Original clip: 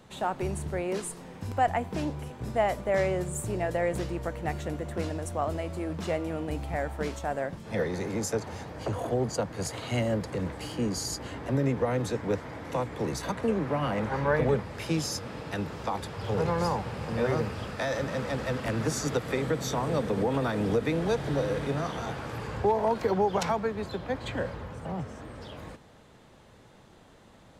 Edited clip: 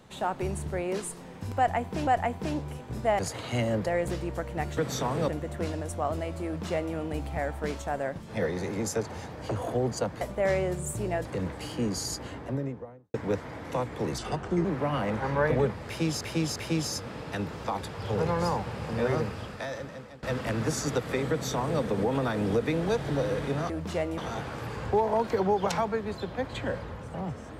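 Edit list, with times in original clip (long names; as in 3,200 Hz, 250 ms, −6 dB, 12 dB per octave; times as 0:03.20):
0:01.58–0:02.07: repeat, 2 plays
0:02.70–0:03.74: swap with 0:09.58–0:10.25
0:05.83–0:06.31: duplicate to 0:21.89
0:11.12–0:12.14: fade out and dull
0:13.18–0:13.54: play speed 77%
0:14.75–0:15.10: repeat, 3 plays
0:17.35–0:18.42: fade out, to −23 dB
0:19.49–0:20.00: duplicate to 0:04.65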